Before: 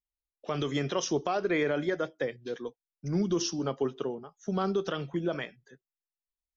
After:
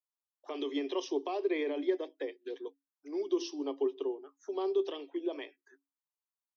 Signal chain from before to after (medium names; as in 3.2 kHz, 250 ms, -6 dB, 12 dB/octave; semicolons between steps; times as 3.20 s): touch-sensitive phaser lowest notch 370 Hz, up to 1.4 kHz, full sweep at -32 dBFS; rippled Chebyshev high-pass 270 Hz, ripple 9 dB; trim +3 dB